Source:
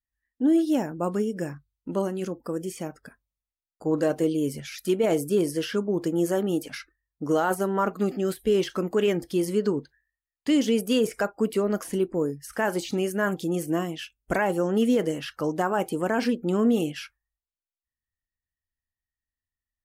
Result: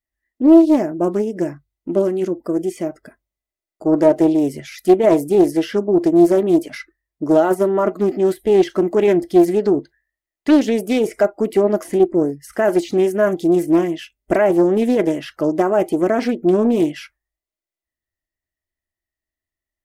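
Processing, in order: small resonant body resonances 350/620/2000 Hz, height 13 dB, ringing for 35 ms; Doppler distortion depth 0.34 ms; gain +1.5 dB

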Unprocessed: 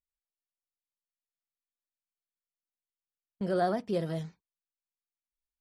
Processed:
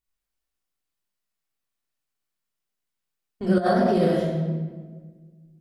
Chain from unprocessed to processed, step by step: shoebox room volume 1400 m³, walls mixed, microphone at 3.4 m; 3.58–4.16 negative-ratio compressor -23 dBFS, ratio -0.5; gain +3.5 dB

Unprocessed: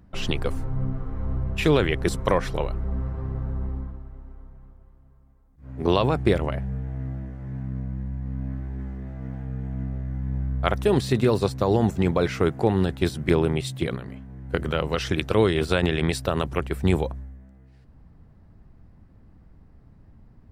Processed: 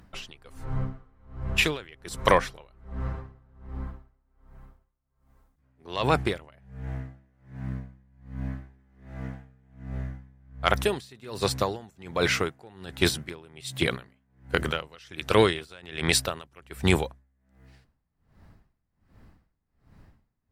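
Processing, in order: in parallel at -6 dB: sine folder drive 3 dB, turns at -3 dBFS; on the sum: tilt shelf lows -6 dB, about 840 Hz; dB-linear tremolo 1.3 Hz, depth 29 dB; gain -2 dB

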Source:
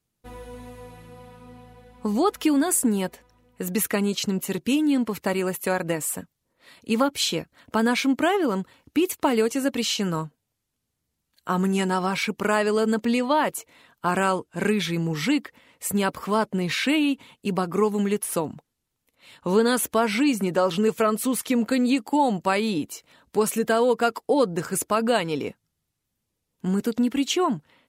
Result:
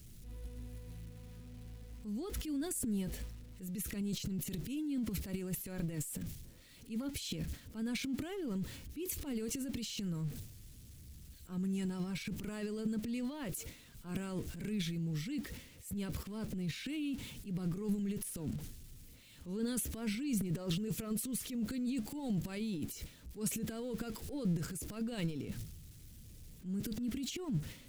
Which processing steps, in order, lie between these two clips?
zero-crossing step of -36 dBFS; transient shaper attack -8 dB, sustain +11 dB; passive tone stack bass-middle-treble 10-0-1; gain +3 dB

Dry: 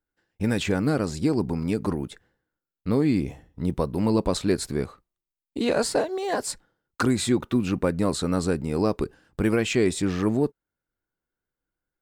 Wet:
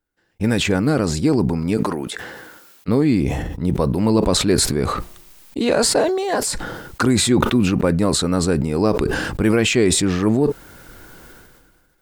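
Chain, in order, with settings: 1.77–2.88 HPF 540 Hz 6 dB/oct; sustainer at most 32 dB/s; gain +5 dB

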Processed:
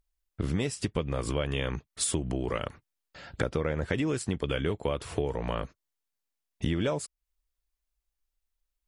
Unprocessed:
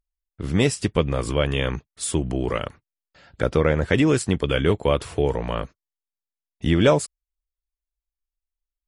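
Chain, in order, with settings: compressor 6:1, threshold -32 dBFS, peak gain reduction 18.5 dB; gain +5 dB

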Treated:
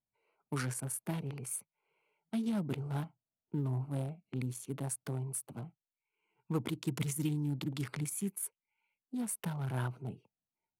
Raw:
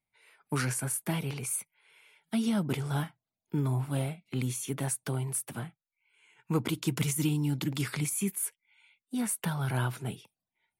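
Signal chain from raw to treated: Wiener smoothing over 25 samples; gain -5 dB

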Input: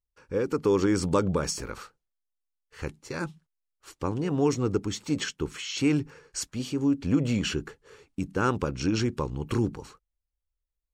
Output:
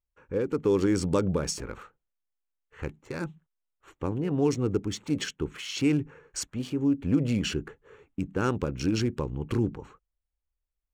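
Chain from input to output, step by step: Wiener smoothing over 9 samples; dynamic EQ 1100 Hz, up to -5 dB, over -43 dBFS, Q 1.2

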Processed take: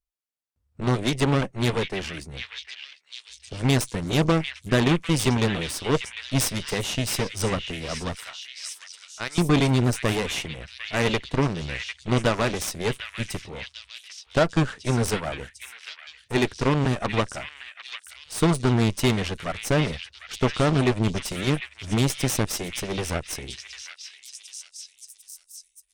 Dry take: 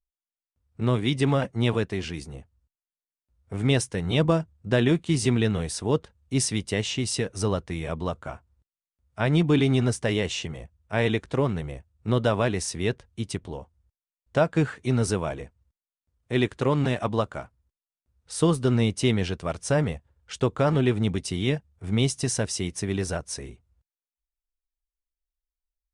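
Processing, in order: 8.15–9.38 HPF 1500 Hz 12 dB/oct; added harmonics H 8 -15 dB, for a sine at -8.5 dBFS; on a send: delay with a stepping band-pass 0.75 s, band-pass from 2500 Hz, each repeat 0.7 oct, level -3 dB

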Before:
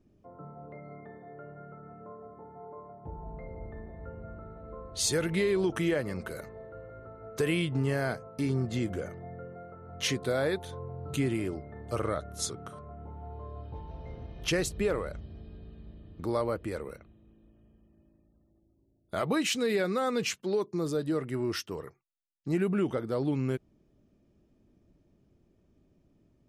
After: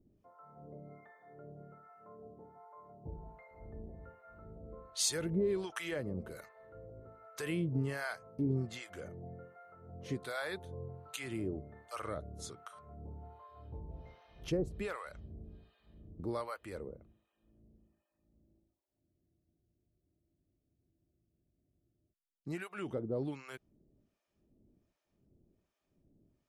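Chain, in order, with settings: harmonic tremolo 1.3 Hz, depth 100%, crossover 720 Hz; spectral freeze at 19.05, 3.06 s; gain -2.5 dB

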